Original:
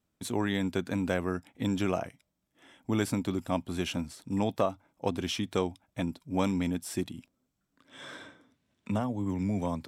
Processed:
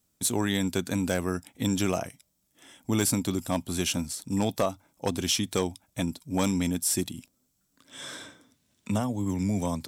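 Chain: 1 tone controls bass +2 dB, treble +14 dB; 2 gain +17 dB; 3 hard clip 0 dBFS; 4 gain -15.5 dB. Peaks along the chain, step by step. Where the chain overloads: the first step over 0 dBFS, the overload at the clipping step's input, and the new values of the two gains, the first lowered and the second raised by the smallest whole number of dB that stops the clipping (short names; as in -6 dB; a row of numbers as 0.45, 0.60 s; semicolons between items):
-11.0, +6.0, 0.0, -15.5 dBFS; step 2, 6.0 dB; step 2 +11 dB, step 4 -9.5 dB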